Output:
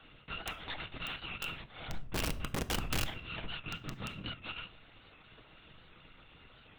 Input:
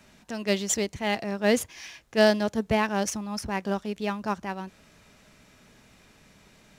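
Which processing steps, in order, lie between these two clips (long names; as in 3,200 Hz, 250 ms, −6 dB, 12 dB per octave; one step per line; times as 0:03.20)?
samples in bit-reversed order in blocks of 256 samples
linear-prediction vocoder at 8 kHz whisper
0:00.53–0:01.20: transient designer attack −6 dB, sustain +1 dB
0:03.58–0:04.29: parametric band 170 Hz +6.5 dB → +13.5 dB 2 octaves
downward compressor 16 to 1, threshold −43 dBFS, peak gain reduction 22 dB
0:01.88–0:03.04: spectral tilt −4 dB per octave
wrap-around overflow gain 34 dB
convolution reverb RT60 0.60 s, pre-delay 6 ms, DRR 11.5 dB
wow of a warped record 78 rpm, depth 100 cents
level +5.5 dB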